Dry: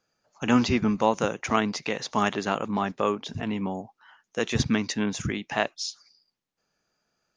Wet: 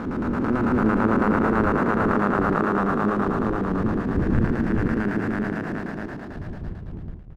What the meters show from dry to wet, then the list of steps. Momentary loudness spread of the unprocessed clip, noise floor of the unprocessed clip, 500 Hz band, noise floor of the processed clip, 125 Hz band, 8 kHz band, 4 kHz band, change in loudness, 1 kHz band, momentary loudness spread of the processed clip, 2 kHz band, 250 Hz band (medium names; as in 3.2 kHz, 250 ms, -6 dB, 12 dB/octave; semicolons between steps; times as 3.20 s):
10 LU, -83 dBFS, +4.0 dB, -36 dBFS, +7.0 dB, under -15 dB, under -10 dB, +4.0 dB, +4.0 dB, 15 LU, +3.5 dB, +6.0 dB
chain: spectral blur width 1370 ms; wind noise 120 Hz -40 dBFS; low-pass 2.7 kHz; dynamic bell 1.4 kHz, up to +4 dB, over -49 dBFS, Q 2.8; LFO low-pass square 9 Hz 350–1500 Hz; hysteresis with a dead band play -47 dBFS; on a send: multi-tap echo 63/416 ms -10.5/-4 dB; on the sum: trim +6.5 dB